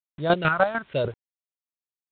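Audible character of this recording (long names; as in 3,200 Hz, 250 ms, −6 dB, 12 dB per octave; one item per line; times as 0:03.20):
phaser sweep stages 4, 1.1 Hz, lowest notch 360–2,400 Hz
chopped level 6.7 Hz, depth 65%, duty 25%
a quantiser's noise floor 10 bits, dither none
G.726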